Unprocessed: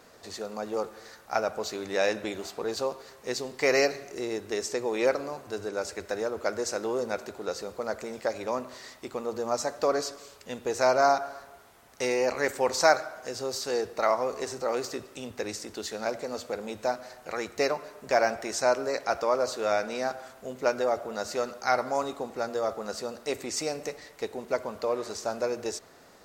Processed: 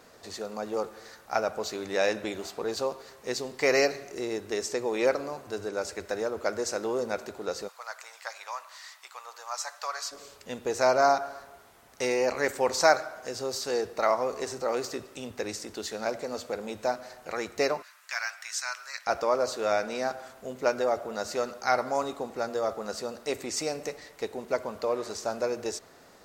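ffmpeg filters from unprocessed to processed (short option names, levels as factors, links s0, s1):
-filter_complex "[0:a]asplit=3[s0][s1][s2];[s0]afade=t=out:st=7.67:d=0.02[s3];[s1]highpass=f=920:w=0.5412,highpass=f=920:w=1.3066,afade=t=in:st=7.67:d=0.02,afade=t=out:st=10.11:d=0.02[s4];[s2]afade=t=in:st=10.11:d=0.02[s5];[s3][s4][s5]amix=inputs=3:normalize=0,asettb=1/sr,asplit=3[s6][s7][s8];[s6]atrim=end=17.824[s9];[s7]atrim=start=17.82:end=19.07,asetpts=PTS-STARTPTS,afade=t=in:d=0.004:c=qsin,afade=t=out:st=1.246:d=0.004:c=qsin,highpass=f=1300:w=0.5412,highpass=f=1300:w=1.3066[s10];[s8]atrim=start=19.066[s11];[s9][s10]acrossfade=d=0.004:c1=hsin:c2=qsin[s12];[s12][s11]acrossfade=d=0.004:c1=qsin:c2=hsin"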